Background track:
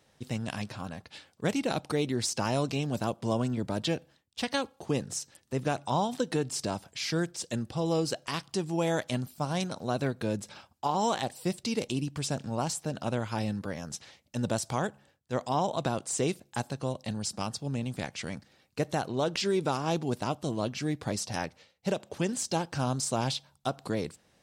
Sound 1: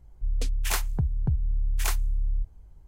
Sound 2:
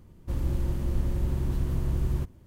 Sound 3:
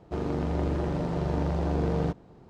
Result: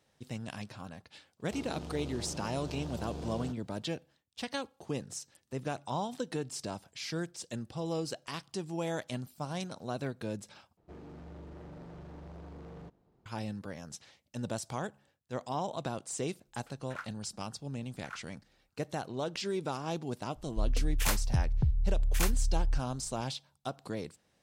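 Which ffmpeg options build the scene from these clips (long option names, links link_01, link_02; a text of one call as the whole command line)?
ffmpeg -i bed.wav -i cue0.wav -i cue1.wav -i cue2.wav -filter_complex "[3:a]asplit=2[link_01][link_02];[1:a]asplit=2[link_03][link_04];[0:a]volume=-6.5dB[link_05];[link_01]aexciter=amount=3.8:drive=5.2:freq=2800[link_06];[link_02]asoftclip=type=hard:threshold=-27.5dB[link_07];[link_03]bandpass=frequency=1400:width_type=q:width=6.6:csg=0[link_08];[link_05]asplit=2[link_09][link_10];[link_09]atrim=end=10.774[link_11];[link_07]atrim=end=2.49,asetpts=PTS-STARTPTS,volume=-17dB[link_12];[link_10]atrim=start=13.256[link_13];[link_06]atrim=end=2.49,asetpts=PTS-STARTPTS,volume=-14dB,afade=type=in:duration=0.004:curve=hsin,afade=type=out:start_time=2.486:duration=0.004:curve=hsin,adelay=1400[link_14];[link_08]atrim=end=2.87,asetpts=PTS-STARTPTS,volume=-2.5dB,afade=type=in:duration=0.004:curve=hsin,afade=type=out:start_time=2.866:duration=0.004:curve=hsin,adelay=16250[link_15];[link_04]atrim=end=2.87,asetpts=PTS-STARTPTS,volume=-2.5dB,afade=type=in:duration=0.004:curve=hsin,afade=type=out:start_time=2.866:duration=0.004:curve=hsin,adelay=20350[link_16];[link_11][link_12]acrossfade=duration=0.004:curve1=hsin:curve2=hsin[link_17];[link_17][link_13]acrossfade=duration=0.004:curve1=hsin:curve2=hsin[link_18];[link_18][link_14][link_15][link_16]amix=inputs=4:normalize=0" out.wav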